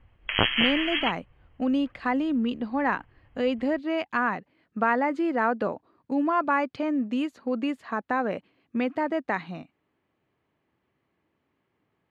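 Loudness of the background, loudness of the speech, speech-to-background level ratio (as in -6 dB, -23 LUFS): -25.0 LUFS, -27.5 LUFS, -2.5 dB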